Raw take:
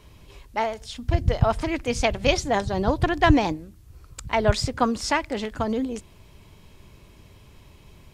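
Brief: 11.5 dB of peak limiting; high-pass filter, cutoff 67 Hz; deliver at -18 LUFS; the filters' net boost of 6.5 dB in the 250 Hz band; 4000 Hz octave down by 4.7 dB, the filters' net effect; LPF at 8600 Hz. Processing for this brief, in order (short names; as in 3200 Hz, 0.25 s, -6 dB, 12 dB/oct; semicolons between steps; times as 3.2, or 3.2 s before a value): HPF 67 Hz; LPF 8600 Hz; bell 250 Hz +8 dB; bell 4000 Hz -6.5 dB; gain +7.5 dB; limiter -7 dBFS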